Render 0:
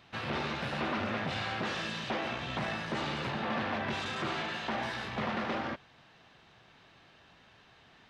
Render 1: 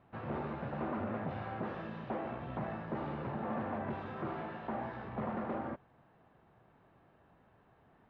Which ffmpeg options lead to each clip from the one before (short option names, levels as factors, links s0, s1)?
-af "lowpass=1000,volume=0.794"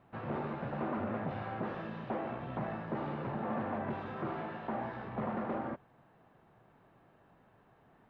-af "equalizer=f=73:t=o:w=0.28:g=-12.5,volume=1.19"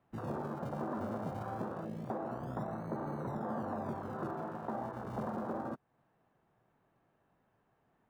-filter_complex "[0:a]afwtdn=0.0112,acrossover=split=130[s0][s1];[s0]acrusher=samples=41:mix=1:aa=0.000001:lfo=1:lforange=41:lforate=0.25[s2];[s2][s1]amix=inputs=2:normalize=0,acompressor=threshold=0.00398:ratio=2,volume=2.11"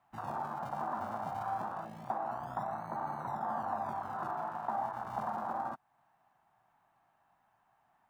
-af "lowshelf=f=610:t=q:w=3:g=-8.5,volume=1.26"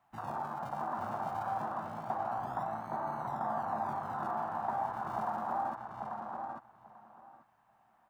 -filter_complex "[0:a]asplit=2[s0][s1];[s1]adelay=840,lowpass=f=4300:p=1,volume=0.631,asplit=2[s2][s3];[s3]adelay=840,lowpass=f=4300:p=1,volume=0.17,asplit=2[s4][s5];[s5]adelay=840,lowpass=f=4300:p=1,volume=0.17[s6];[s0][s2][s4][s6]amix=inputs=4:normalize=0"